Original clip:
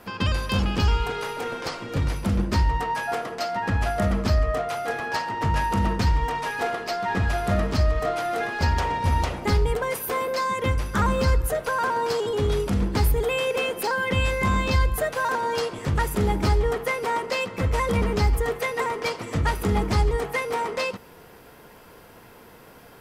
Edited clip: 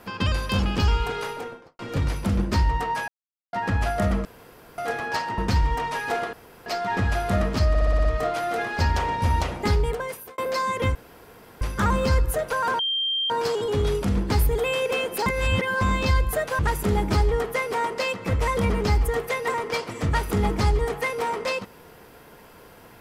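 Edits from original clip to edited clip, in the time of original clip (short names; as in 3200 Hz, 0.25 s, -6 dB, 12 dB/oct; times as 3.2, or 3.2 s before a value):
1.22–1.79 studio fade out
3.08–3.53 mute
4.25–4.78 room tone
5.38–5.89 cut
6.84 insert room tone 0.33 s
7.87 stutter 0.06 s, 7 plays
9.41–10.2 fade out equal-power
10.77 insert room tone 0.66 s
11.95 add tone 3170 Hz -22 dBFS 0.51 s
13.91–14.46 reverse
15.24–15.91 cut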